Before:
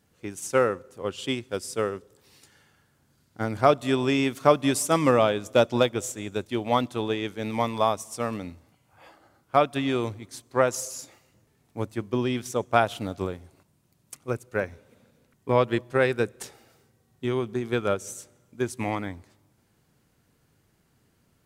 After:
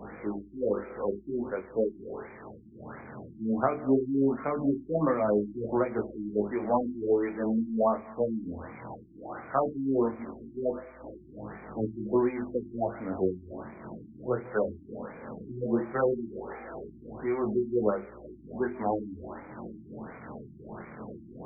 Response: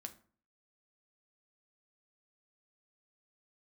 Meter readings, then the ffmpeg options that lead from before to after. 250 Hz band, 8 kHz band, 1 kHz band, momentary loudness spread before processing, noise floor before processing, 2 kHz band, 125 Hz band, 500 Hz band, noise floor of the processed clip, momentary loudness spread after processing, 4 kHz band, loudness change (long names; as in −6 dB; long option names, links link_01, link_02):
−0.5 dB, below −40 dB, −7.0 dB, 15 LU, −67 dBFS, −11.0 dB, −7.5 dB, −3.5 dB, −50 dBFS, 17 LU, below −40 dB, −4.5 dB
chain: -filter_complex "[0:a]aeval=exprs='val(0)+0.5*0.0266*sgn(val(0))':channel_layout=same,acrossover=split=170 7900:gain=0.178 1 0.0794[link_01][link_02][link_03];[link_01][link_02][link_03]amix=inputs=3:normalize=0,bandreject=frequency=50:width_type=h:width=6,bandreject=frequency=100:width_type=h:width=6,bandreject=frequency=150:width_type=h:width=6,bandreject=frequency=200:width_type=h:width=6,bandreject=frequency=250:width_type=h:width=6,bandreject=frequency=300:width_type=h:width=6,bandreject=frequency=350:width_type=h:width=6,bandreject=frequency=400:width_type=h:width=6,bandreject=frequency=450:width_type=h:width=6,aeval=exprs='val(0)+0.00126*(sin(2*PI*60*n/s)+sin(2*PI*2*60*n/s)/2+sin(2*PI*3*60*n/s)/3+sin(2*PI*4*60*n/s)/4+sin(2*PI*5*60*n/s)/5)':channel_layout=same,acrossover=split=300|3000[link_04][link_05][link_06];[link_05]acompressor=threshold=-23dB:ratio=5[link_07];[link_04][link_07][link_06]amix=inputs=3:normalize=0,flanger=delay=19:depth=4.5:speed=0.17,tremolo=f=2.8:d=0.56,asplit=2[link_08][link_09];[1:a]atrim=start_sample=2205,lowpass=5300[link_10];[link_09][link_10]afir=irnorm=-1:irlink=0,volume=3dB[link_11];[link_08][link_11]amix=inputs=2:normalize=0,afftfilt=real='re*lt(b*sr/1024,360*pow(2500/360,0.5+0.5*sin(2*PI*1.4*pts/sr)))':imag='im*lt(b*sr/1024,360*pow(2500/360,0.5+0.5*sin(2*PI*1.4*pts/sr)))':win_size=1024:overlap=0.75"